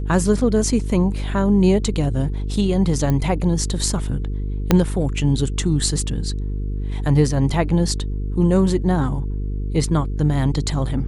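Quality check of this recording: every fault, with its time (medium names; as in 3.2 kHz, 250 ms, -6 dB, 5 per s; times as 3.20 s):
buzz 50 Hz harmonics 9 -24 dBFS
3.10 s: pop -10 dBFS
4.71 s: pop -1 dBFS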